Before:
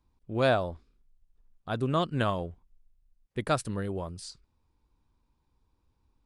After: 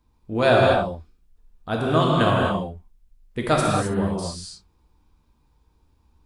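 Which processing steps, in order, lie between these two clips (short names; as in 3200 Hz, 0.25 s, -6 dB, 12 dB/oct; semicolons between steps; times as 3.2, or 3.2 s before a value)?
non-linear reverb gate 0.29 s flat, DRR -3 dB; gain +5 dB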